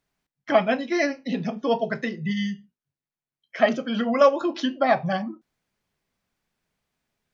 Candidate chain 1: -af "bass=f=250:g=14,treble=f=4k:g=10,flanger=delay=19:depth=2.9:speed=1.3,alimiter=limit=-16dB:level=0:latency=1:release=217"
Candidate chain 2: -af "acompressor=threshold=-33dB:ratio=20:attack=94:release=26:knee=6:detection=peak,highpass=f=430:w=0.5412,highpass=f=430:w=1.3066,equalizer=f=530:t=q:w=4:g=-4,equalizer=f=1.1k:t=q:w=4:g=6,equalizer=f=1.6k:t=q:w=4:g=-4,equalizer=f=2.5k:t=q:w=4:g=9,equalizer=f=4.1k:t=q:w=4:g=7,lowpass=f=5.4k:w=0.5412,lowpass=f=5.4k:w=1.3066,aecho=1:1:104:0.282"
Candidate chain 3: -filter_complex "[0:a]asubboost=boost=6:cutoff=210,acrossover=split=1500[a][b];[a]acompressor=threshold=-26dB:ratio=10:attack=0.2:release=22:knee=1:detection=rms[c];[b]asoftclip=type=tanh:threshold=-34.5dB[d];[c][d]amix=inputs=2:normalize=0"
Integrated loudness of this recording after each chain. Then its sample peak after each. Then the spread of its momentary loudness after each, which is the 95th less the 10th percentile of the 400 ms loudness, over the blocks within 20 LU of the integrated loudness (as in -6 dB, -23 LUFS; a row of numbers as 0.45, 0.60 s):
-26.0, -32.0, -30.5 LUFS; -16.0, -12.0, -21.5 dBFS; 7, 8, 5 LU